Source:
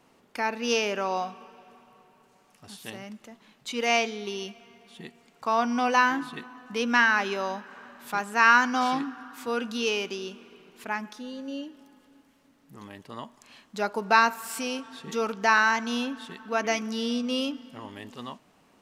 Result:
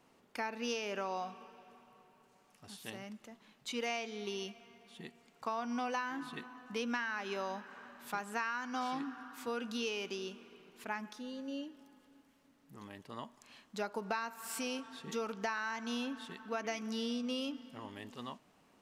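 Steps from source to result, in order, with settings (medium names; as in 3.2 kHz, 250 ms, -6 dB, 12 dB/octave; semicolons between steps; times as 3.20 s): compression 16:1, threshold -27 dBFS, peak gain reduction 15 dB; trim -6 dB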